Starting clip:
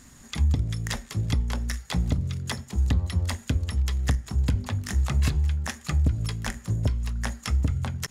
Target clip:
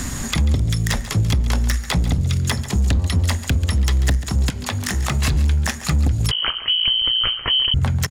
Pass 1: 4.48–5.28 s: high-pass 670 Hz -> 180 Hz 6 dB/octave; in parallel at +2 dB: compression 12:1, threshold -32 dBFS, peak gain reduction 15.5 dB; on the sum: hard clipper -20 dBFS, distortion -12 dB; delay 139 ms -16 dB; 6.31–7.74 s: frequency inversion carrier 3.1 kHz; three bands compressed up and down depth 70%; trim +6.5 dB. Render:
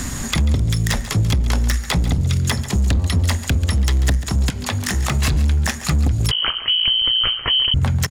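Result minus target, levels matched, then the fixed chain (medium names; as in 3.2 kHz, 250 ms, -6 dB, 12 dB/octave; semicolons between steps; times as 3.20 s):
compression: peak gain reduction -6 dB
4.48–5.28 s: high-pass 670 Hz -> 180 Hz 6 dB/octave; in parallel at +2 dB: compression 12:1, threshold -38.5 dBFS, peak gain reduction 21 dB; on the sum: hard clipper -20 dBFS, distortion -13 dB; delay 139 ms -16 dB; 6.31–7.74 s: frequency inversion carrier 3.1 kHz; three bands compressed up and down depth 70%; trim +6.5 dB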